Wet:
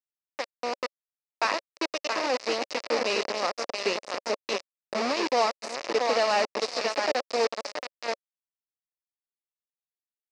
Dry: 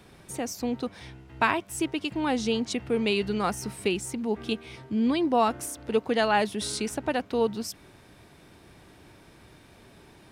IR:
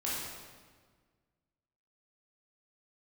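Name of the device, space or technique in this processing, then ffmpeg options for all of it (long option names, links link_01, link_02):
hand-held game console: -filter_complex "[0:a]asettb=1/sr,asplit=3[link_01][link_02][link_03];[link_01]atrim=end=1.054[link_04];[link_02]atrim=start=1.05:end=1.45,asetpts=PTS-STARTPTS,afade=type=in:duration=0.004:curve=qsin,afade=type=out:start_time=0.396:duration=0.004:curve=qsin,highpass=frequency=290:width=0.5412,highpass=frequency=290:width=1.3066[link_05];[link_03]atrim=start=1.446[link_06];[link_04][link_05]acrossfade=duration=0.004:curve1=hsin:curve2=qsin[link_07];[link_07][link_06]acrossfade=duration=0.004:curve1=qsin:curve2=hsin,aecho=1:1:674|1348|2022|2696|3370:0.562|0.236|0.0992|0.0417|0.0175,afftfilt=real='re*gte(hypot(re,im),0.01)':imag='im*gte(hypot(re,im),0.01)':win_size=1024:overlap=0.75,acrusher=bits=3:mix=0:aa=0.000001,highpass=470,equalizer=frequency=560:width_type=q:width=4:gain=7,equalizer=frequency=880:width_type=q:width=4:gain=-3,equalizer=frequency=1500:width_type=q:width=4:gain=-7,equalizer=frequency=3300:width_type=q:width=4:gain=-10,equalizer=frequency=5000:width_type=q:width=4:gain=5,lowpass=frequency=5400:width=0.5412,lowpass=frequency=5400:width=1.3066"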